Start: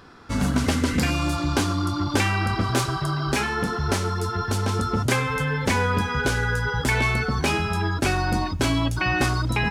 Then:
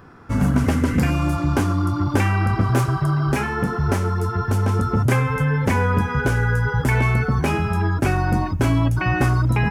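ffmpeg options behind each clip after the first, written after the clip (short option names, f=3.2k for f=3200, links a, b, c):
-af "equalizer=f=125:t=o:w=1:g=6,equalizer=f=4k:t=o:w=1:g=-12,equalizer=f=8k:t=o:w=1:g=-5,volume=2dB"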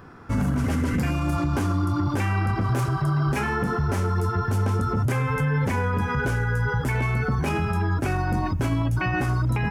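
-af "alimiter=limit=-16dB:level=0:latency=1:release=48"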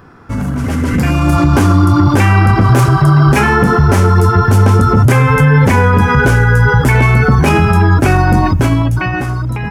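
-af "dynaudnorm=f=120:g=17:m=10dB,volume=5dB"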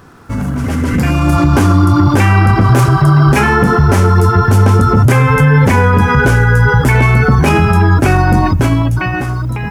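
-af "acrusher=bits=7:mix=0:aa=0.5"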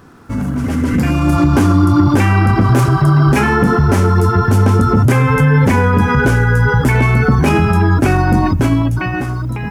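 -af "equalizer=f=260:w=1.4:g=4.5,volume=-3.5dB"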